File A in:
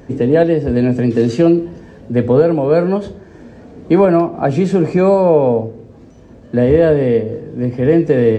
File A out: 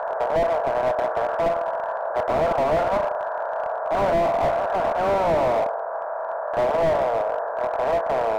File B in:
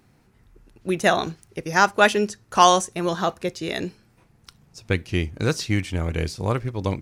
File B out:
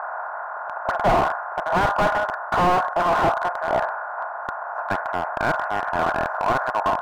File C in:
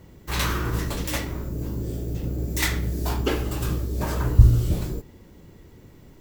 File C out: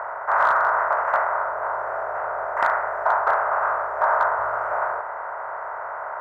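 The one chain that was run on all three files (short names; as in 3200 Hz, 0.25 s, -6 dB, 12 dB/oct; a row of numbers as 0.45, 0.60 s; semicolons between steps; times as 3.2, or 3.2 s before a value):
per-bin compression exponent 0.4; elliptic band-pass 640–1500 Hz, stop band 50 dB; slew limiter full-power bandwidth 91 Hz; match loudness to -23 LUFS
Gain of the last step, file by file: -0.5, +3.5, +11.0 dB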